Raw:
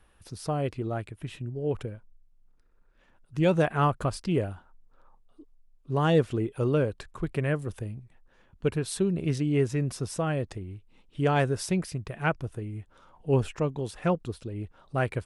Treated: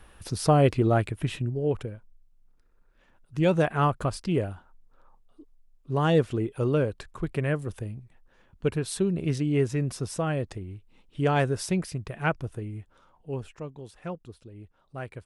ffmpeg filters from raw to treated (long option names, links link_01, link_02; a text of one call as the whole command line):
ffmpeg -i in.wav -af "volume=9.5dB,afade=type=out:start_time=1.15:duration=0.64:silence=0.354813,afade=type=out:start_time=12.67:duration=0.68:silence=0.298538" out.wav